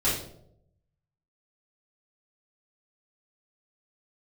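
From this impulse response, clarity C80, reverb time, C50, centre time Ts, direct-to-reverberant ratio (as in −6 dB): 7.5 dB, 0.75 s, 3.0 dB, 44 ms, −11.5 dB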